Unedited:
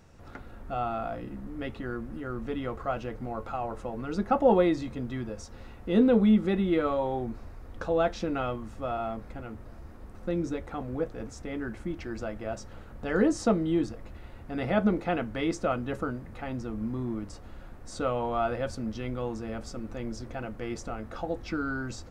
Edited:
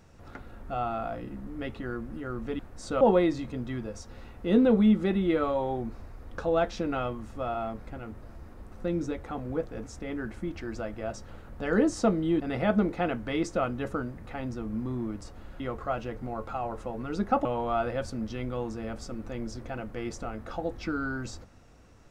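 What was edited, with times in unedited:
2.59–4.44 s: swap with 17.68–18.10 s
13.83–14.48 s: delete

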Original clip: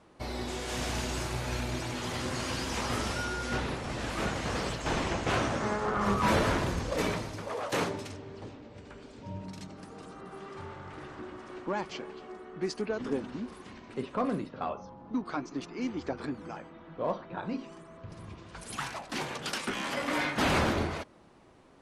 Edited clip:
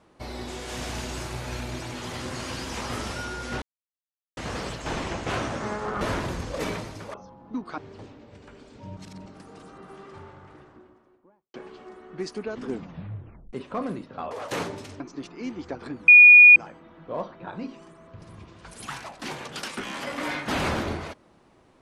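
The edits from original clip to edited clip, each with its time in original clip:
3.62–4.37 s: mute
6.01–6.39 s: delete
7.52–8.21 s: swap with 14.74–15.38 s
9.40–9.69 s: reverse
10.21–11.97 s: studio fade out
13.08 s: tape stop 0.88 s
16.46 s: add tone 2.45 kHz -7 dBFS 0.48 s

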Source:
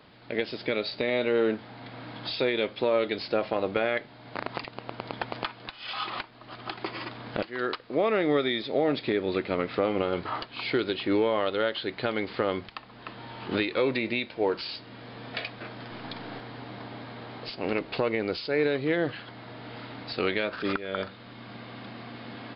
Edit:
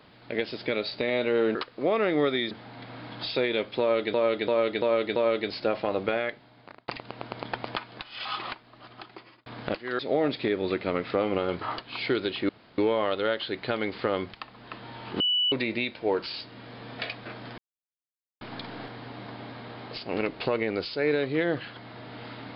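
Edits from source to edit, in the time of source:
2.84–3.18 s: loop, 5 plays
3.75–4.56 s: fade out
6.01–7.14 s: fade out
7.67–8.63 s: move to 1.55 s
11.13 s: insert room tone 0.29 s
13.55–13.87 s: bleep 2.96 kHz -21.5 dBFS
15.93 s: insert silence 0.83 s

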